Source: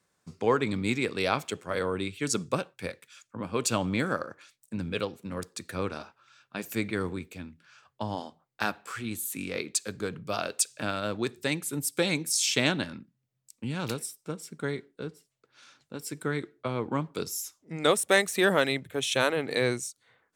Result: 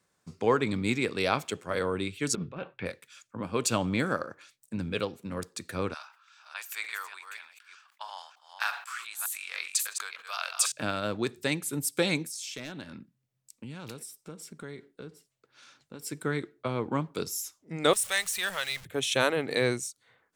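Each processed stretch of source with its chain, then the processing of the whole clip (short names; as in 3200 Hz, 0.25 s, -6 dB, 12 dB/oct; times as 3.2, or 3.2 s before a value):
2.35–2.86 LPF 3100 Hz 24 dB/oct + negative-ratio compressor -36 dBFS
5.94–10.72 reverse delay 0.302 s, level -7.5 dB + HPF 970 Hz 24 dB/oct + sustainer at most 120 dB/s
12.26–16.03 hard clip -17 dBFS + compressor 3:1, threshold -40 dBFS
17.93–18.85 zero-crossing step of -33.5 dBFS + passive tone stack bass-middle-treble 10-0-10
whole clip: dry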